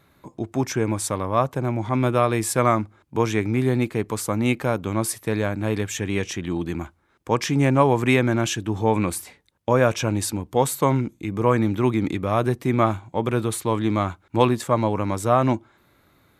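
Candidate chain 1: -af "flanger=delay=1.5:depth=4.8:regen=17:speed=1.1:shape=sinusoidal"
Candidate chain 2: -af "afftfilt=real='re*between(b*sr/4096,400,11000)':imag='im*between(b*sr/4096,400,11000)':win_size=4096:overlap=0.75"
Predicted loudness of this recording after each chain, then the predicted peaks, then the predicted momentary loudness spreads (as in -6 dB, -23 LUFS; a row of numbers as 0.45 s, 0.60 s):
-27.0 LUFS, -26.0 LUFS; -7.0 dBFS, -5.0 dBFS; 7 LU, 12 LU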